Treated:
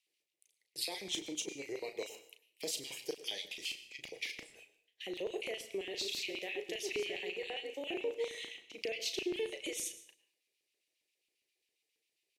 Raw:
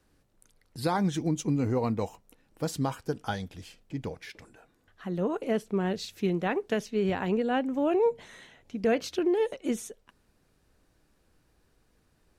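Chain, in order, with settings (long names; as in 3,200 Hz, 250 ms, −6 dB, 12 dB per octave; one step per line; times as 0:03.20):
0:05.70–0:08.29: delay that plays each chunk backwards 204 ms, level −5.5 dB
high-pass filter 130 Hz
noise gate −56 dBFS, range −15 dB
high shelf with overshoot 1,500 Hz +10.5 dB, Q 3
brickwall limiter −16.5 dBFS, peak gain reduction 10 dB
downward compressor, threshold −30 dBFS, peak gain reduction 8.5 dB
phaser with its sweep stopped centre 590 Hz, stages 4
auto-filter high-pass square 7.4 Hz 330–2,700 Hz
double-tracking delay 36 ms −9 dB
convolution reverb RT60 0.55 s, pre-delay 93 ms, DRR 14 dB
level −5 dB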